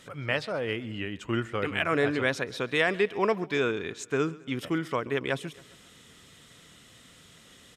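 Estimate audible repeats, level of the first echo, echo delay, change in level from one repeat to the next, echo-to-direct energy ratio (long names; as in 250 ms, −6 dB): 3, −21.5 dB, 135 ms, −5.5 dB, −20.0 dB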